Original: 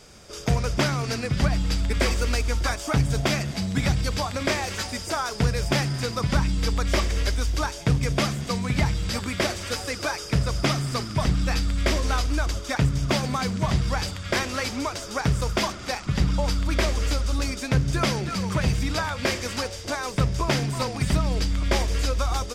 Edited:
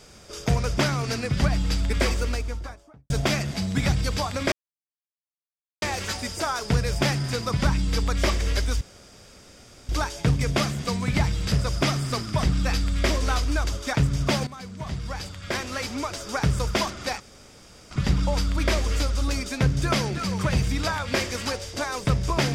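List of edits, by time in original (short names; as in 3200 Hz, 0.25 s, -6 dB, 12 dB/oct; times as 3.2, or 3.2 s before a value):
1.95–3.1 studio fade out
4.52 insert silence 1.30 s
7.51 insert room tone 1.08 s
9.14–10.34 cut
13.29–15.21 fade in, from -15.5 dB
16.02 insert room tone 0.71 s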